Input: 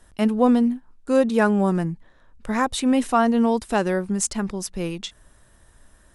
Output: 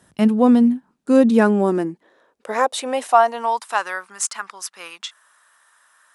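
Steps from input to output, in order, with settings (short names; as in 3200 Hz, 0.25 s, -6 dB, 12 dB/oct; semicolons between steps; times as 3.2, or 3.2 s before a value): high-pass sweep 140 Hz -> 1200 Hz, 0.46–3.97; gain +1 dB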